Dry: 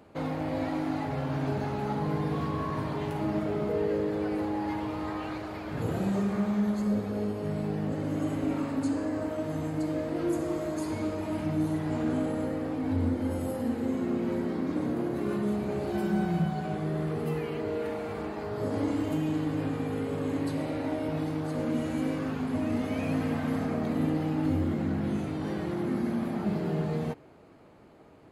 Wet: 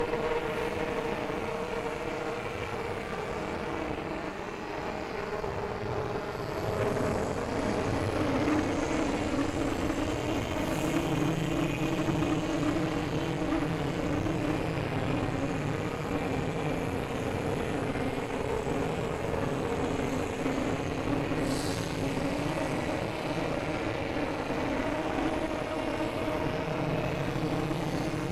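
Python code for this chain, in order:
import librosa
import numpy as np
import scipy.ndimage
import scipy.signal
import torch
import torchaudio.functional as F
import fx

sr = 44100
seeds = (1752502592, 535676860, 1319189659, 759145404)

y = fx.paulstretch(x, sr, seeds[0], factor=8.0, window_s=0.05, from_s=17.78)
y = fx.cheby_harmonics(y, sr, harmonics=(8,), levels_db=(-16,), full_scale_db=-15.0)
y = fx.graphic_eq_15(y, sr, hz=(250, 2500, 6300), db=(-4, 6, 7))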